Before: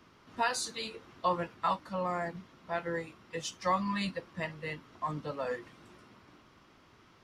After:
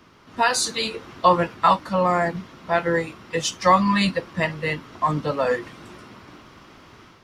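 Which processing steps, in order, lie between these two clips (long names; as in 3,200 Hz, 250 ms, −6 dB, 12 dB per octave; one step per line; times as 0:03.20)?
automatic gain control gain up to 6 dB
level +7.5 dB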